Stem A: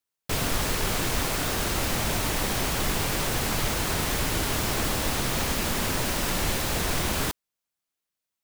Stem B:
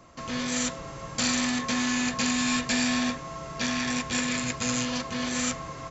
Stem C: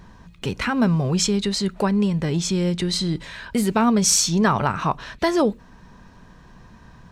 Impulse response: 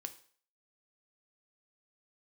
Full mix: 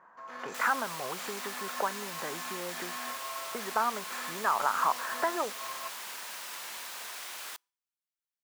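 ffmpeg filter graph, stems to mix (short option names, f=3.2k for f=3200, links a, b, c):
-filter_complex "[0:a]adelay=250,volume=-18.5dB,asplit=2[a][b];[b]volume=-21.5dB[c];[1:a]adynamicsmooth=sensitivity=7:basefreq=5k,alimiter=limit=-21.5dB:level=0:latency=1:release=192,equalizer=f=11k:w=0.78:g=13.5,volume=-3.5dB,asplit=2[d][e];[e]volume=-19.5dB[f];[2:a]volume=-0.5dB,asplit=3[g][h][i];[g]atrim=end=2.97,asetpts=PTS-STARTPTS,afade=t=out:st=2.966:d=0.004:c=hsin[j];[h]atrim=start=2.97:end=3.54,asetpts=PTS-STARTPTS,volume=0[k];[i]atrim=start=3.54,asetpts=PTS-STARTPTS,afade=t=in:d=0.004:c=hsin[l];[j][k][l]concat=n=3:v=0:a=1[m];[d][m]amix=inputs=2:normalize=0,lowpass=f=1.5k:w=0.5412,lowpass=f=1.5k:w=1.3066,acompressor=threshold=-24dB:ratio=6,volume=0dB[n];[3:a]atrim=start_sample=2205[o];[c][f]amix=inputs=2:normalize=0[p];[p][o]afir=irnorm=-1:irlink=0[q];[a][n][q]amix=inputs=3:normalize=0,highpass=990,dynaudnorm=f=250:g=3:m=6.5dB"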